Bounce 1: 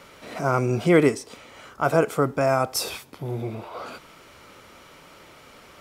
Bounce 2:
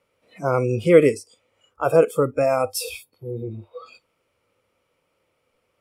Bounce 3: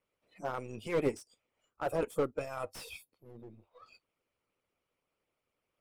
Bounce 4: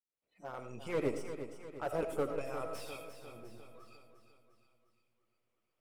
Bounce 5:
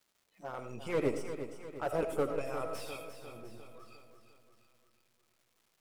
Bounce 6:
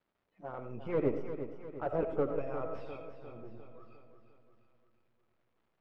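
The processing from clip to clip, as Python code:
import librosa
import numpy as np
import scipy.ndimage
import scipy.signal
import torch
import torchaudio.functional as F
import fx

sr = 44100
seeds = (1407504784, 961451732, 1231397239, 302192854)

y1 = fx.noise_reduce_blind(x, sr, reduce_db=23)
y1 = fx.graphic_eq_31(y1, sr, hz=(100, 500, 1600, 2500, 4000, 6300, 10000), db=(8, 10, -4, 4, -4, -4, 5))
y1 = F.gain(torch.from_numpy(y1), -1.0).numpy()
y2 = np.where(y1 < 0.0, 10.0 ** (-3.0 / 20.0) * y1, y1)
y2 = fx.hpss(y2, sr, part='harmonic', gain_db=-17)
y2 = fx.slew_limit(y2, sr, full_power_hz=73.0)
y2 = F.gain(torch.from_numpy(y2), -7.5).numpy()
y3 = fx.fade_in_head(y2, sr, length_s=0.84)
y3 = fx.echo_feedback(y3, sr, ms=352, feedback_pct=52, wet_db=-10)
y3 = fx.rev_freeverb(y3, sr, rt60_s=0.45, hf_ratio=0.35, predelay_ms=45, drr_db=7.5)
y3 = F.gain(torch.from_numpy(y3), -3.5).numpy()
y4 = fx.dmg_crackle(y3, sr, seeds[0], per_s=480.0, level_db=-62.0)
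y4 = F.gain(torch.from_numpy(y4), 2.5).numpy()
y5 = fx.spacing_loss(y4, sr, db_at_10k=44)
y5 = F.gain(torch.from_numpy(y5), 2.5).numpy()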